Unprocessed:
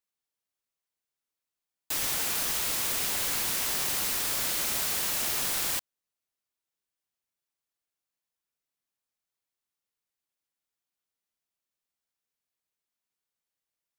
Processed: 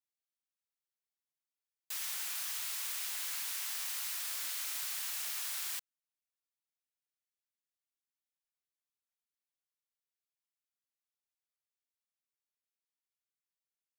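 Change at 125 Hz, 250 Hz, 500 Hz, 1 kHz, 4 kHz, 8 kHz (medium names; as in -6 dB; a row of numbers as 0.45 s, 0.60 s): under -40 dB, under -30 dB, -22.5 dB, -13.5 dB, -9.0 dB, -9.0 dB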